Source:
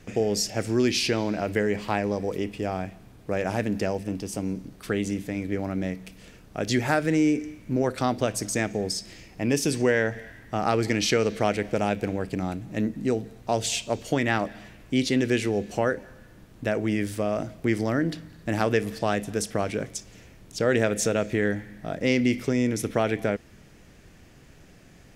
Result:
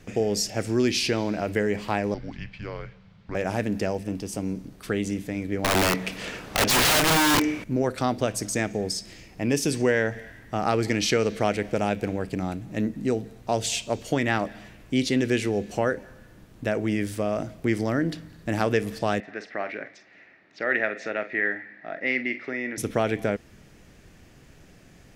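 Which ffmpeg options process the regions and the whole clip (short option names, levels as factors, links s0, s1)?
-filter_complex "[0:a]asettb=1/sr,asplit=3[s0][s1][s2];[s0]atrim=end=2.144[s3];[s1]atrim=start=2.14:end=3.35,asetpts=PTS-STARTPTS,afade=t=in:d=0.004:c=qsin,afade=t=out:st=1.206:d=0.004:c=qsin,lowpass=f=4800:w=0.5412,lowpass=f=4800:w=1.3066,equalizer=f=320:t=o:w=2.4:g=-10.5,afreqshift=-220[s4];[s2]atrim=start=3.346[s5];[s3][s4]acrossfade=d=0.004:c1=hsin:c2=qsin[s6];[s6][s5]acrossfade=d=0.004:c1=qsin:c2=hsin,asettb=1/sr,asplit=3[s7][s8][s9];[s7]atrim=end=5.644[s10];[s8]atrim=start=5.64:end=7.64,asetpts=PTS-STARTPTS,afade=t=in:d=0.004:c=qsin,afade=t=out:st=1.996:d=0.004:c=qsin,lowshelf=f=83:g=5.5,asplit=2[s11][s12];[s12]highpass=f=720:p=1,volume=20,asoftclip=type=tanh:threshold=0.355[s13];[s11][s13]amix=inputs=2:normalize=0,lowpass=f=2800:p=1,volume=0.501,aeval=exprs='(mod(6.31*val(0)+1,2)-1)/6.31':c=same[s14];[s9]atrim=start=7.636[s15];[s10][s14]acrossfade=d=0.004:c1=hsin:c2=qsin[s16];[s16][s15]acrossfade=d=0.004:c1=qsin:c2=hsin,asettb=1/sr,asplit=3[s17][s18][s19];[s17]atrim=end=19.204[s20];[s18]atrim=start=19.2:end=22.78,asetpts=PTS-STARTPTS,afade=t=in:d=0.004:c=qsin,afade=t=out:st=3.576:d=0.004:c=qsin,highpass=420,equalizer=f=470:t=q:w=4:g=-9,equalizer=f=1000:t=q:w=4:g=-6,equalizer=f=1900:t=q:w=4:g=10,equalizer=f=3200:t=q:w=4:g=-10,lowpass=f=3500:w=0.5412,lowpass=f=3500:w=1.3066,asplit=2[s21][s22];[s22]adelay=46,volume=0.251[s23];[s21][s23]amix=inputs=2:normalize=0,atrim=end_sample=157878[s24];[s19]atrim=start=22.776[s25];[s20][s24]acrossfade=d=0.004:c1=hsin:c2=qsin[s26];[s26][s25]acrossfade=d=0.004:c1=qsin:c2=hsin"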